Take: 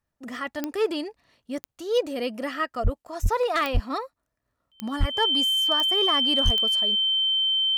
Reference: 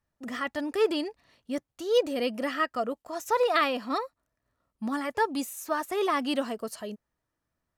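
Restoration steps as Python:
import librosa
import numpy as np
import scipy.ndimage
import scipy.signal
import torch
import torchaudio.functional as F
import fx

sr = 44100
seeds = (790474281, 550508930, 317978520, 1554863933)

y = fx.fix_declip(x, sr, threshold_db=-14.0)
y = fx.fix_declick_ar(y, sr, threshold=10.0)
y = fx.notch(y, sr, hz=3100.0, q=30.0)
y = fx.fix_deplosive(y, sr, at_s=(2.83, 3.22, 3.73, 4.99, 6.44))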